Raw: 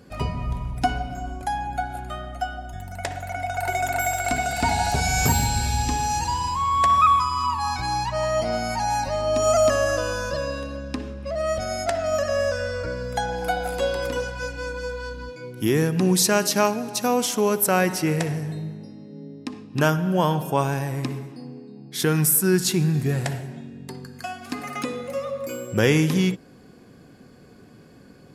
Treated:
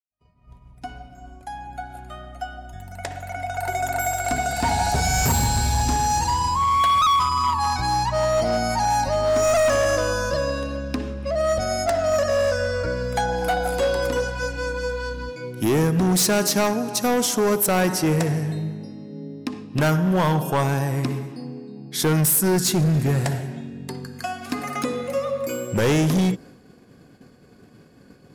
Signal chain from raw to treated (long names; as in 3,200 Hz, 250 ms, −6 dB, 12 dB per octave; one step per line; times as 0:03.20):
fade in at the beginning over 5.92 s
dynamic equaliser 2,600 Hz, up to −5 dB, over −41 dBFS, Q 1.6
gain into a clipping stage and back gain 20 dB
downward expander −43 dBFS
level +4 dB